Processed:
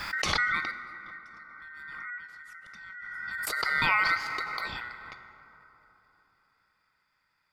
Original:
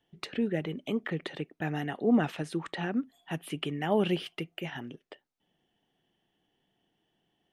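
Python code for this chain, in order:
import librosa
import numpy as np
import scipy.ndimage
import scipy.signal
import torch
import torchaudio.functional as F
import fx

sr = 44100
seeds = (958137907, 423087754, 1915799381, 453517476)

y = fx.tone_stack(x, sr, knobs='10-0-1', at=(0.71, 3.47))
y = y * np.sin(2.0 * np.pi * 1700.0 * np.arange(len(y)) / sr)
y = fx.rev_plate(y, sr, seeds[0], rt60_s=3.7, hf_ratio=0.4, predelay_ms=0, drr_db=8.0)
y = fx.pre_swell(y, sr, db_per_s=21.0)
y = y * 10.0 ** (3.0 / 20.0)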